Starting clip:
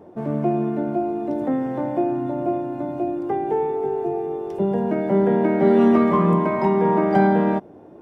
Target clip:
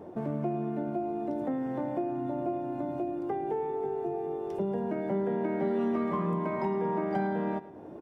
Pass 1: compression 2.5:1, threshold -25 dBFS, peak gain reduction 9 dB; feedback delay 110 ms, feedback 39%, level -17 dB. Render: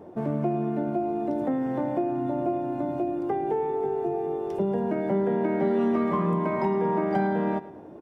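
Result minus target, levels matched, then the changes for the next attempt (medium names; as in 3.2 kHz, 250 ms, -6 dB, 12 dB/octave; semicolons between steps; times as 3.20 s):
compression: peak gain reduction -5 dB
change: compression 2.5:1, threshold -33.5 dBFS, peak gain reduction 14 dB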